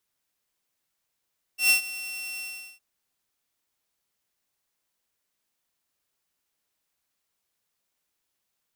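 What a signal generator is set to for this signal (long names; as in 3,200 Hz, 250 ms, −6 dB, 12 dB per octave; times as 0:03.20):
note with an ADSR envelope saw 2,710 Hz, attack 124 ms, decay 106 ms, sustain −17.5 dB, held 0.83 s, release 383 ms −13 dBFS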